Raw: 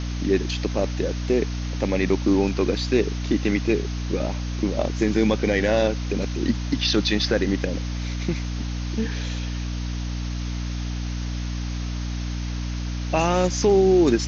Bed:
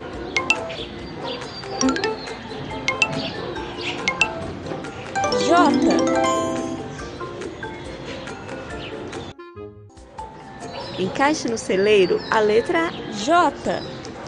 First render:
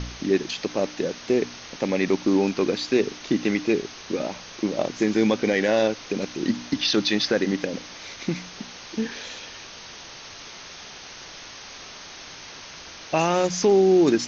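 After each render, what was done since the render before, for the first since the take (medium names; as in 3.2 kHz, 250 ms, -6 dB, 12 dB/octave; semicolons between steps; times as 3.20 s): de-hum 60 Hz, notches 5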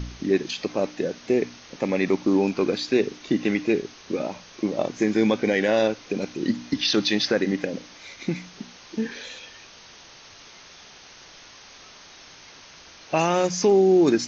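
noise print and reduce 6 dB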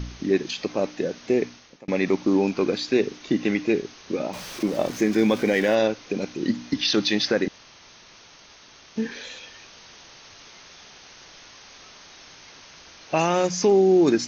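1.43–1.88 s: fade out; 4.33–5.75 s: jump at every zero crossing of -34.5 dBFS; 7.48–8.96 s: room tone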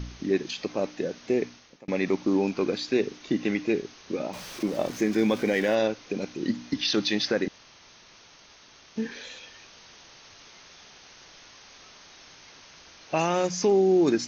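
trim -3.5 dB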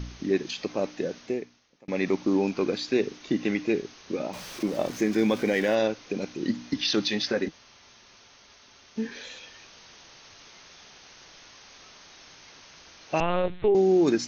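1.18–2.00 s: dip -11.5 dB, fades 0.27 s; 7.08–9.15 s: comb of notches 160 Hz; 13.20–13.75 s: LPC vocoder at 8 kHz pitch kept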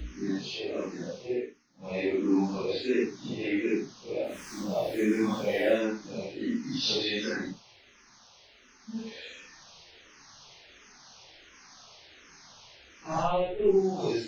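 phase randomisation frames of 200 ms; barber-pole phaser -1.4 Hz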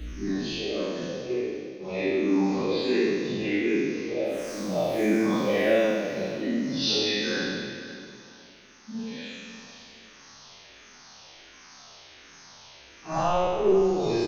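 spectral sustain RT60 1.76 s; feedback delay 501 ms, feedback 25%, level -14 dB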